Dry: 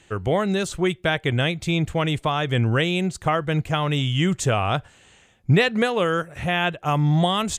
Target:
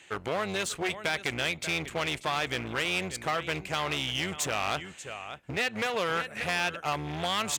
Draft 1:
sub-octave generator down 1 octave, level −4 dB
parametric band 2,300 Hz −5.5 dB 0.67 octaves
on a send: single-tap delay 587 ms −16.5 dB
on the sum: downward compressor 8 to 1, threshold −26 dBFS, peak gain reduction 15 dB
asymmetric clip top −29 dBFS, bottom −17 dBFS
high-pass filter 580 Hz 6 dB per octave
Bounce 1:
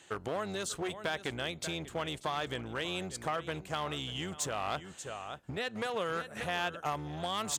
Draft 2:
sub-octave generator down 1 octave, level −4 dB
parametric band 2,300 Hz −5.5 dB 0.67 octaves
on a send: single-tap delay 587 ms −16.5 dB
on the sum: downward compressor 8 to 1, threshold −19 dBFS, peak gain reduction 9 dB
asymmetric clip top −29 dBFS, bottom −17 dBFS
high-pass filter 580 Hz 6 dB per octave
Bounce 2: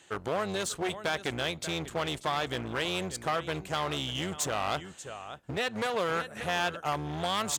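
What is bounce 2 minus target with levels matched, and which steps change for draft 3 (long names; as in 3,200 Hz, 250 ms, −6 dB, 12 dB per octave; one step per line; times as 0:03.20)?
2,000 Hz band −2.5 dB
change: parametric band 2,300 Hz +5.5 dB 0.67 octaves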